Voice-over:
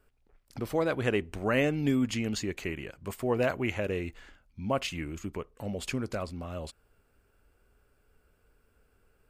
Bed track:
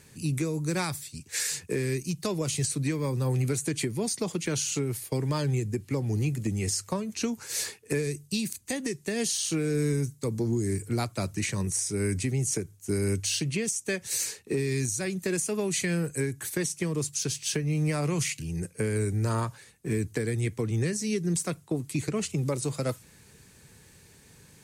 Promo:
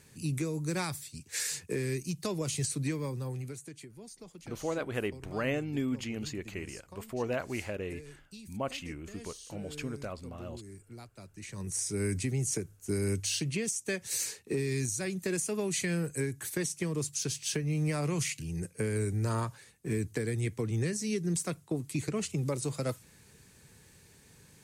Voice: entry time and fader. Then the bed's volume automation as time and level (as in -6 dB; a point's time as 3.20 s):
3.90 s, -5.5 dB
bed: 2.93 s -4 dB
3.84 s -19.5 dB
11.30 s -19.5 dB
11.81 s -3.5 dB